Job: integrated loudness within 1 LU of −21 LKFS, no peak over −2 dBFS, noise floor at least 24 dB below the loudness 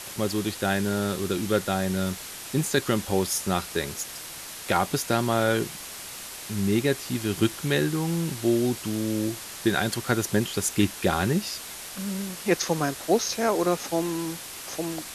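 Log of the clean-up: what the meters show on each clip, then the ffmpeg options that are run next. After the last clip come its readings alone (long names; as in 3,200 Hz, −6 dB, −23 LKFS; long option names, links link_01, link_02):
background noise floor −39 dBFS; target noise floor −51 dBFS; integrated loudness −26.5 LKFS; sample peak −9.0 dBFS; target loudness −21.0 LKFS
→ -af "afftdn=noise_reduction=12:noise_floor=-39"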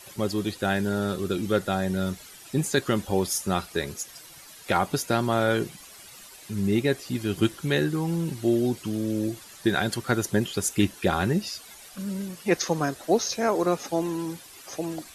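background noise floor −47 dBFS; target noise floor −51 dBFS
→ -af "afftdn=noise_reduction=6:noise_floor=-47"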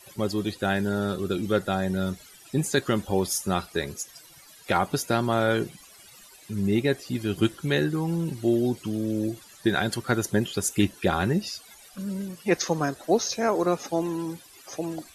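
background noise floor −51 dBFS; integrated loudness −27.0 LKFS; sample peak −9.0 dBFS; target loudness −21.0 LKFS
→ -af "volume=6dB"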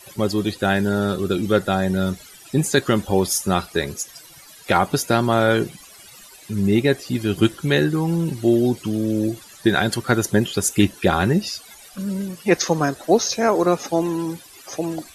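integrated loudness −21.0 LKFS; sample peak −3.0 dBFS; background noise floor −45 dBFS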